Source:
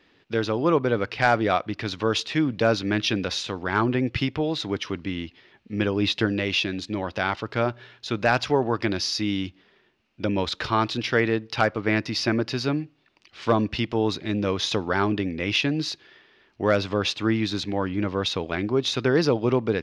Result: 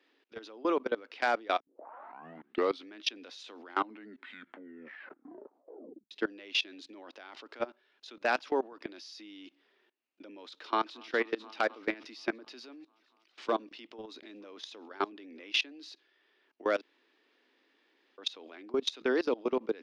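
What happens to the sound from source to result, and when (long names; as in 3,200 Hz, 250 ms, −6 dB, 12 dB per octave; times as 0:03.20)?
0:01.60: tape start 1.29 s
0:03.58: tape stop 2.53 s
0:10.62–0:11.10: delay throw 240 ms, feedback 75%, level −13 dB
0:12.65–0:15.47: single-tap delay 934 ms −21 dB
0:16.81–0:18.18: fill with room tone
whole clip: Butterworth high-pass 250 Hz 48 dB per octave; dynamic equaliser 3,500 Hz, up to +3 dB, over −38 dBFS, Q 1.5; output level in coarse steps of 22 dB; level −5 dB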